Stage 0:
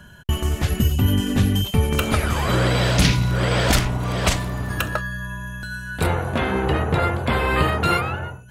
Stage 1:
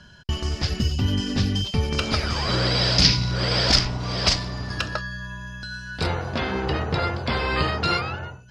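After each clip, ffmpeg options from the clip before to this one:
ffmpeg -i in.wav -af "lowpass=frequency=5000:width_type=q:width=8.5,volume=-4.5dB" out.wav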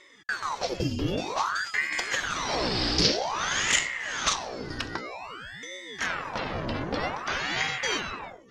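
ffmpeg -i in.wav -af "aeval=exprs='val(0)*sin(2*PI*1100*n/s+1100*0.85/0.52*sin(2*PI*0.52*n/s))':channel_layout=same,volume=-3dB" out.wav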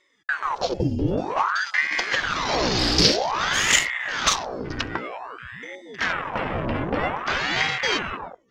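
ffmpeg -i in.wav -af "afwtdn=0.0126,volume=5.5dB" out.wav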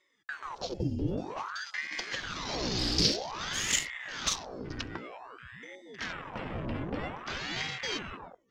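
ffmpeg -i in.wav -filter_complex "[0:a]acrossover=split=390|3000[link_01][link_02][link_03];[link_02]acompressor=threshold=-44dB:ratio=1.5[link_04];[link_01][link_04][link_03]amix=inputs=3:normalize=0,volume=-7.5dB" out.wav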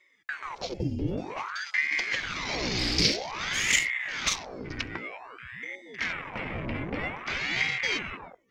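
ffmpeg -i in.wav -af "equalizer=frequency=2200:width_type=o:width=0.44:gain=12,volume=1.5dB" out.wav

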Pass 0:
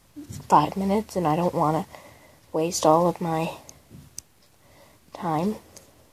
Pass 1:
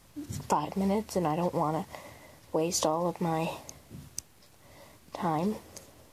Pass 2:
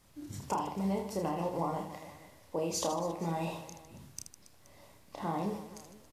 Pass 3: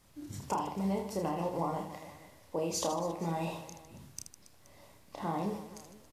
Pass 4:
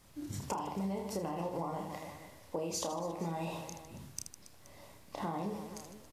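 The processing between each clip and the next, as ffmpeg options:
ffmpeg -i in.wav -af "acompressor=threshold=-24dB:ratio=8" out.wav
ffmpeg -i in.wav -af "aecho=1:1:30|78|154.8|277.7|474.3:0.631|0.398|0.251|0.158|0.1,volume=-7dB" out.wav
ffmpeg -i in.wav -af anull out.wav
ffmpeg -i in.wav -af "acompressor=threshold=-36dB:ratio=6,volume=2.5dB" out.wav

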